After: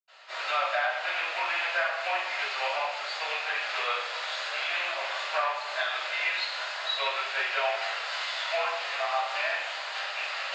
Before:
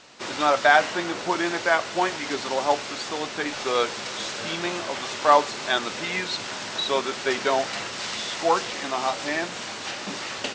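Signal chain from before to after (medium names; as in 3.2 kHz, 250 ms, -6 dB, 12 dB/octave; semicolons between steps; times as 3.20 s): rattle on loud lows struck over -37 dBFS, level -16 dBFS; steep high-pass 600 Hz 36 dB/octave; compression 10:1, threshold -24 dBFS, peak gain reduction 12.5 dB; reverberation RT60 0.90 s, pre-delay 77 ms, DRR -60 dB; trim -5 dB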